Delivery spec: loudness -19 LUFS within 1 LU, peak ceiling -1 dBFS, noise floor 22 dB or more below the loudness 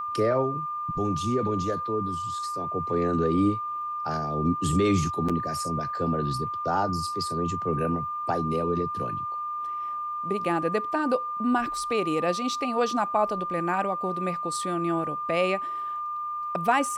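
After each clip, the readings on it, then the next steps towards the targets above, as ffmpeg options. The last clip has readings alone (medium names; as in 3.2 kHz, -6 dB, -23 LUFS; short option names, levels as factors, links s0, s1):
steady tone 1.2 kHz; tone level -29 dBFS; loudness -27.0 LUFS; peak level -10.5 dBFS; loudness target -19.0 LUFS
-> -af "bandreject=f=1200:w=30"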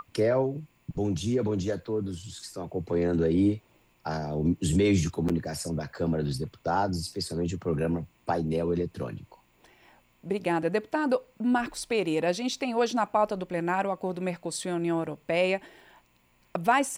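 steady tone not found; loudness -29.0 LUFS; peak level -11.5 dBFS; loudness target -19.0 LUFS
-> -af "volume=3.16"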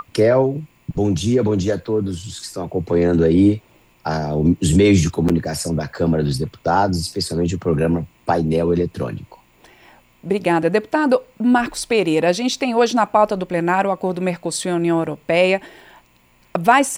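loudness -19.0 LUFS; peak level -1.5 dBFS; noise floor -55 dBFS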